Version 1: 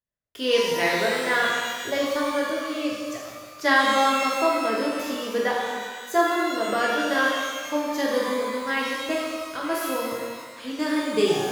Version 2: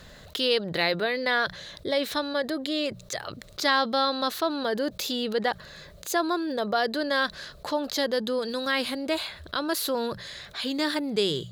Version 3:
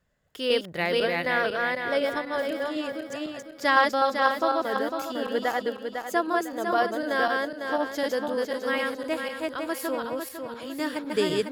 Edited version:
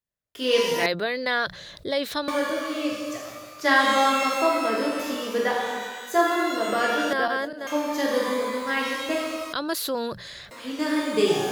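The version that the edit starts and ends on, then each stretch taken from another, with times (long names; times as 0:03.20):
1
0:00.86–0:02.28: punch in from 2
0:07.13–0:07.67: punch in from 3
0:09.53–0:10.51: punch in from 2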